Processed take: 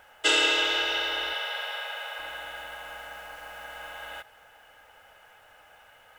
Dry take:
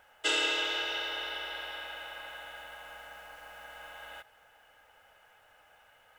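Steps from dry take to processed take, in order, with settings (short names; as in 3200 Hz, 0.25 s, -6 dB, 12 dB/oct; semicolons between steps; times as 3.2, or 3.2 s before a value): 1.33–2.19 steep high-pass 450 Hz 48 dB/oct; gain +6.5 dB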